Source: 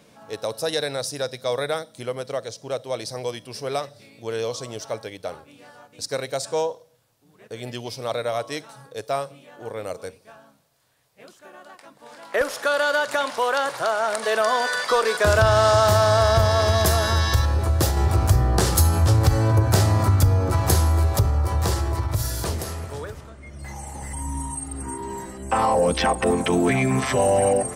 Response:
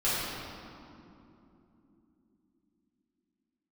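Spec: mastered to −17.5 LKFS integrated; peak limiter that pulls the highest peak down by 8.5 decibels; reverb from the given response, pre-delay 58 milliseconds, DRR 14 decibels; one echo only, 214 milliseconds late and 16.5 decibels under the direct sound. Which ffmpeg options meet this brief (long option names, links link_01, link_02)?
-filter_complex "[0:a]alimiter=limit=-14dB:level=0:latency=1,aecho=1:1:214:0.15,asplit=2[link_01][link_02];[1:a]atrim=start_sample=2205,adelay=58[link_03];[link_02][link_03]afir=irnorm=-1:irlink=0,volume=-25.5dB[link_04];[link_01][link_04]amix=inputs=2:normalize=0,volume=7dB"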